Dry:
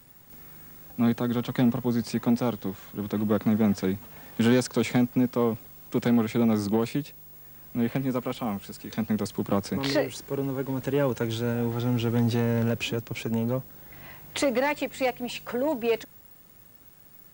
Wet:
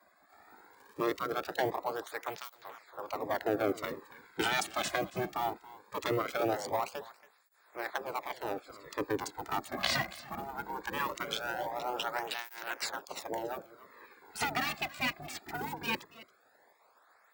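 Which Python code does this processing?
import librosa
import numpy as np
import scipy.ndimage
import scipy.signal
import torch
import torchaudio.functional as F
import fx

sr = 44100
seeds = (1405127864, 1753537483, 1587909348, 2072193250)

p1 = fx.wiener(x, sr, points=15)
p2 = fx.spec_gate(p1, sr, threshold_db=-15, keep='weak')
p3 = fx.over_compress(p2, sr, threshold_db=-35.0, ratio=-1.0)
p4 = p2 + (p3 * 10.0 ** (2.5 / 20.0))
p5 = fx.dmg_crackle(p4, sr, seeds[0], per_s=140.0, level_db=-44.0, at=(0.72, 1.57), fade=0.02)
p6 = p5 + fx.echo_single(p5, sr, ms=278, db=-19.0, dry=0)
y = fx.flanger_cancel(p6, sr, hz=0.2, depth_ms=2.3)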